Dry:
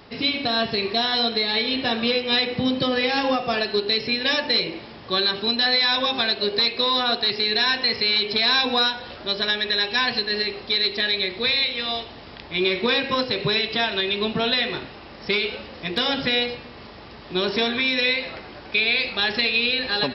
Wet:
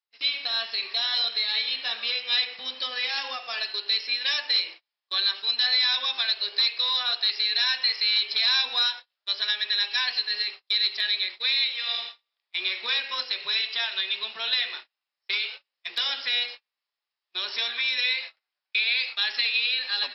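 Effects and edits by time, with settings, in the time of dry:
0:11.72–0:12.47: thrown reverb, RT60 2 s, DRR 2.5 dB
whole clip: noise gate −30 dBFS, range −39 dB; high-pass filter 1,200 Hz 12 dB per octave; high-shelf EQ 4,300 Hz +9.5 dB; level −6 dB

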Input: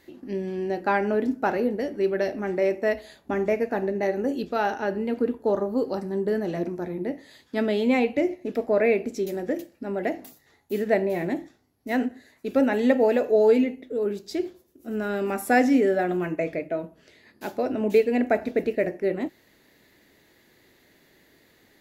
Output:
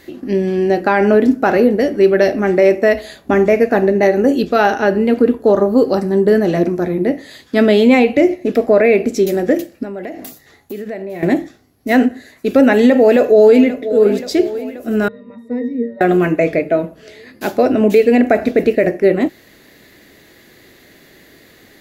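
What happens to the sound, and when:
0:09.83–0:11.23: downward compressor 5 to 1, threshold −38 dBFS
0:12.93–0:13.89: delay throw 530 ms, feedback 65%, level −15.5 dB
0:15.08–0:16.01: resonances in every octave A#, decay 0.29 s
whole clip: notch filter 900 Hz, Q 8.3; boost into a limiter +14.5 dB; level −1 dB

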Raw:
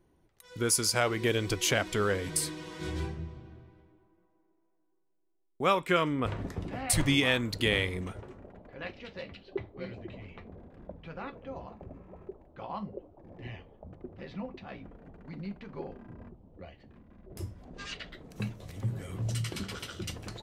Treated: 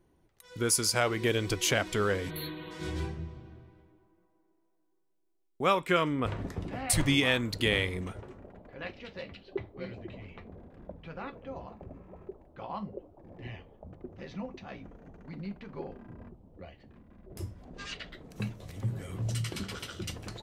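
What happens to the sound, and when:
0:02.30–0:02.71: time-frequency box erased 4,400–11,000 Hz
0:14.12–0:15.26: parametric band 6,200 Hz +10.5 dB 0.36 octaves

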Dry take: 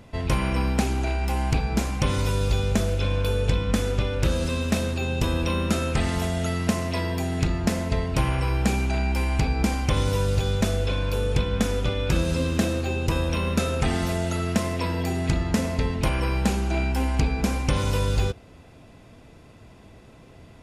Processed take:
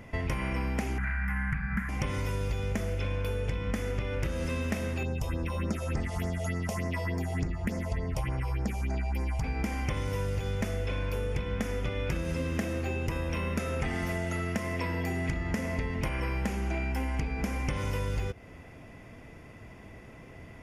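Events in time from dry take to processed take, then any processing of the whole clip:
0:00.98–0:01.89: drawn EQ curve 120 Hz 0 dB, 190 Hz +7 dB, 370 Hz −25 dB, 690 Hz −16 dB, 1,200 Hz +5 dB, 1,700 Hz +14 dB, 2,700 Hz −9 dB, 5,700 Hz −20 dB, 10,000 Hz −7 dB
0:05.03–0:09.44: all-pass phaser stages 4, 3.4 Hz, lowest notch 250–3,200 Hz
whole clip: thirty-one-band graphic EQ 2,000 Hz +9 dB, 4,000 Hz −12 dB, 8,000 Hz −7 dB; downward compressor, threshold −28 dBFS

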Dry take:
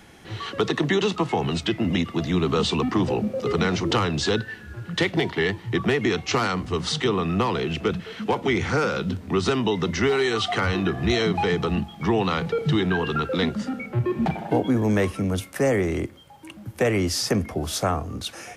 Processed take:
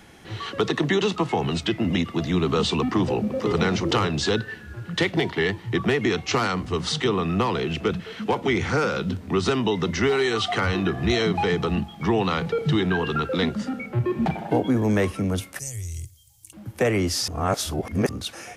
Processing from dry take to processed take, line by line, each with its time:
0:02.81–0:03.60: delay throw 490 ms, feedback 15%, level −8.5 dB
0:15.59–0:16.53: drawn EQ curve 110 Hz 0 dB, 210 Hz −30 dB, 1,500 Hz −28 dB, 6,800 Hz +9 dB
0:17.28–0:18.09: reverse

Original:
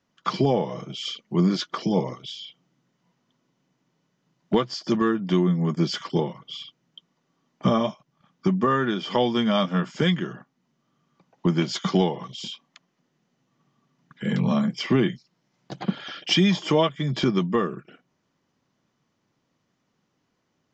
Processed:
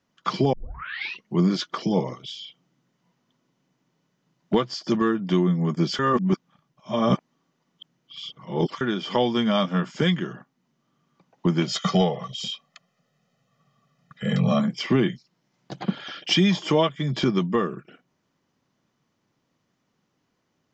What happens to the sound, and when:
0:00.53: tape start 0.73 s
0:05.99–0:08.81: reverse
0:11.67–0:14.60: comb filter 1.6 ms, depth 91%

